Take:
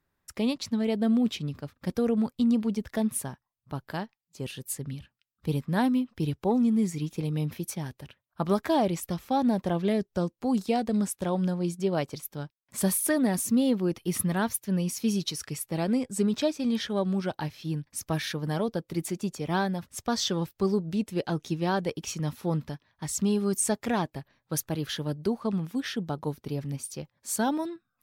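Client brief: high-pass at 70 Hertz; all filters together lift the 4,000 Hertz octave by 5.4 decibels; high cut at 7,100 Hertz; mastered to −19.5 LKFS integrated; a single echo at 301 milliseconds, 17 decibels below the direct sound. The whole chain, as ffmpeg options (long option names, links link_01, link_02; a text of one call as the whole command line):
ffmpeg -i in.wav -af "highpass=70,lowpass=7100,equalizer=frequency=4000:width_type=o:gain=7,aecho=1:1:301:0.141,volume=9dB" out.wav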